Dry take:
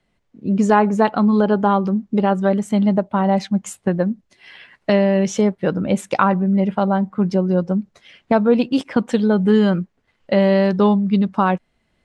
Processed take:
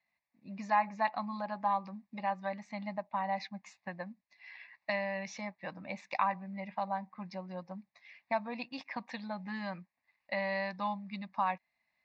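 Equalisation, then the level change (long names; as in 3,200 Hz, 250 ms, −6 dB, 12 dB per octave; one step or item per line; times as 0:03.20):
resonant band-pass 2,900 Hz, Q 0.65
high-frequency loss of the air 160 metres
phaser with its sweep stopped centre 2,100 Hz, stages 8
−3.5 dB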